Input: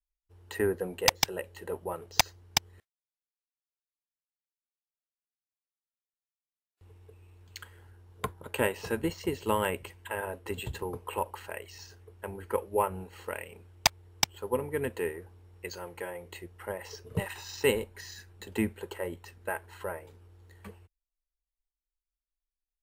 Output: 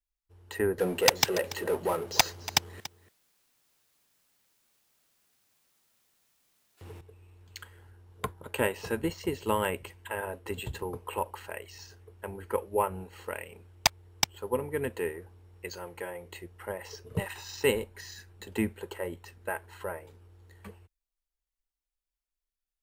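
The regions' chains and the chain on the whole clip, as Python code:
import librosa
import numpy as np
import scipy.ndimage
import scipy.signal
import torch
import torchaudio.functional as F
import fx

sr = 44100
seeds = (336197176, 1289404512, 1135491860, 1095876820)

y = fx.chain(x, sr, fx.highpass(hz=130.0, slope=12),
    fx.power_curve(exponent=0.7),
    fx.echo_single(ms=285, db=-16.0), at=(0.78, 7.01))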